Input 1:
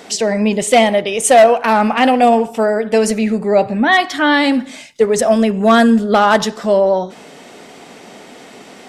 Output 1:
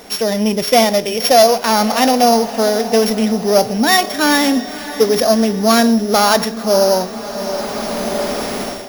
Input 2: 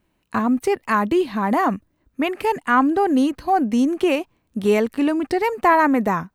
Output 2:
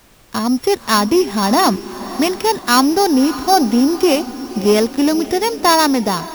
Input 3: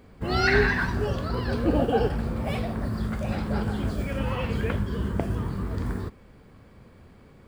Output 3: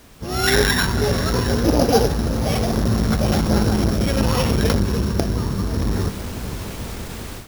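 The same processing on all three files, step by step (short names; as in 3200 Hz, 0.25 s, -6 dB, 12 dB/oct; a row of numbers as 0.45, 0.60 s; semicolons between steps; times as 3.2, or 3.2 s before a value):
sample sorter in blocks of 8 samples; on a send: diffused feedback echo 0.58 s, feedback 54%, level -15 dB; on the sum: added noise pink -48 dBFS; AGC gain up to 15 dB; core saturation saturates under 310 Hz; gain -1 dB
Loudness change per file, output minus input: -1.0, +4.5, +7.0 LU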